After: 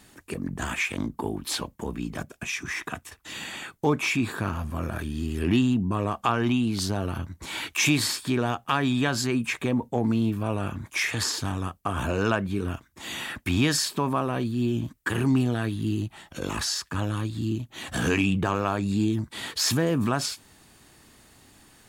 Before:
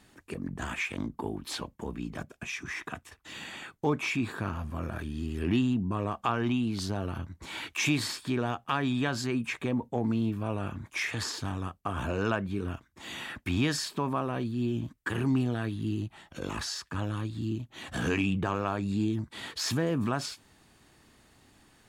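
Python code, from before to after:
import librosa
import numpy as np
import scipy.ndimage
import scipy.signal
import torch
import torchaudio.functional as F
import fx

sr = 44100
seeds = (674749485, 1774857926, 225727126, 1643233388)

y = fx.high_shelf(x, sr, hz=7000.0, db=8.5)
y = y * 10.0 ** (4.5 / 20.0)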